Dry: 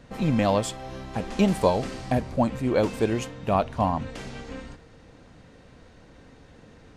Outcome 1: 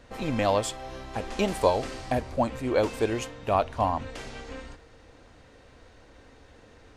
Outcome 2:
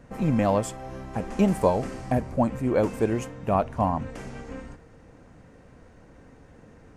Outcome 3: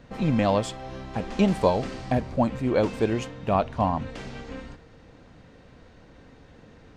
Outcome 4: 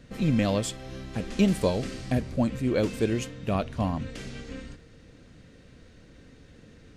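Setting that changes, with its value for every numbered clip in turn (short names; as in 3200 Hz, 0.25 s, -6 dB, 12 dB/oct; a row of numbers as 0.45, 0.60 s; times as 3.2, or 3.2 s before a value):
bell, frequency: 170, 3800, 12000, 870 Hz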